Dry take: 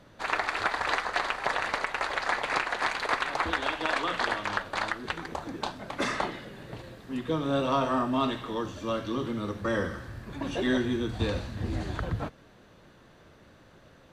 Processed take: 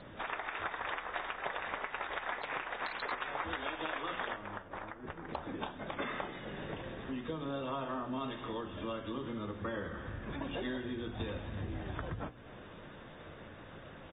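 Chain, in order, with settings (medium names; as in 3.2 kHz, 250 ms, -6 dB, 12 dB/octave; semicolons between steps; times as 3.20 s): hum notches 60/120/180/240/300/360 Hz; compression 4:1, threshold -44 dBFS, peak gain reduction 18 dB; 4.36–5.29 s: tape spacing loss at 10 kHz 42 dB; feedback delay 263 ms, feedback 37%, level -19.5 dB; trim +4.5 dB; AAC 16 kbps 32 kHz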